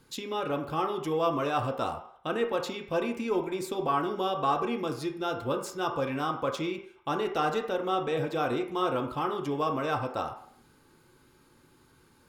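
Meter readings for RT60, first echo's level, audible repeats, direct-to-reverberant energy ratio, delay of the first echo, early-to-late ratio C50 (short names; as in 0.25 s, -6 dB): 0.60 s, none, none, 2.5 dB, none, 8.5 dB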